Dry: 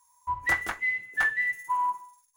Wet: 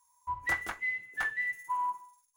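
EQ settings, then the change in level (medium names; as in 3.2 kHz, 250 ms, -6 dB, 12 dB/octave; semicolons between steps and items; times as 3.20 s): band-stop 1.8 kHz, Q 21; -5.0 dB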